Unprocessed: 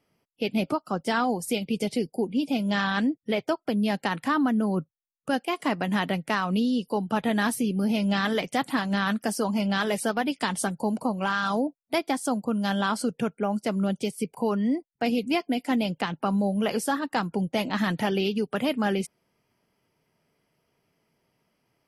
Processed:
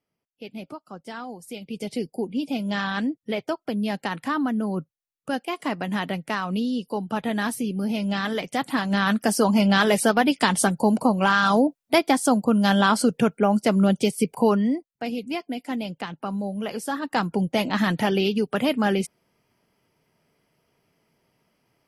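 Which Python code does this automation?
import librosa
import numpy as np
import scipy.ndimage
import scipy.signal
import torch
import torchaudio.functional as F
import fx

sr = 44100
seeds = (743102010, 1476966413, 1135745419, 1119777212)

y = fx.gain(x, sr, db=fx.line((1.44, -11.0), (2.0, -1.0), (8.41, -1.0), (9.43, 7.0), (14.49, 7.0), (14.93, -4.0), (16.8, -4.0), (17.2, 3.5)))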